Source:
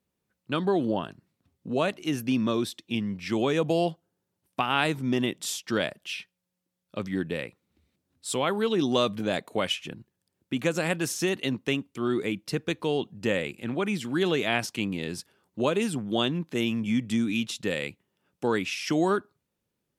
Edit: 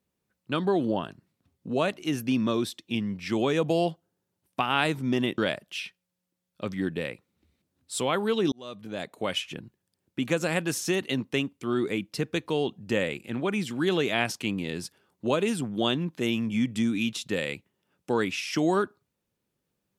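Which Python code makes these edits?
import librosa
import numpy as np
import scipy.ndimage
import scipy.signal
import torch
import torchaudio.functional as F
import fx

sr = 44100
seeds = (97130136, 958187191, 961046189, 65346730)

y = fx.edit(x, sr, fx.cut(start_s=5.38, length_s=0.34),
    fx.fade_in_span(start_s=8.86, length_s=0.99), tone=tone)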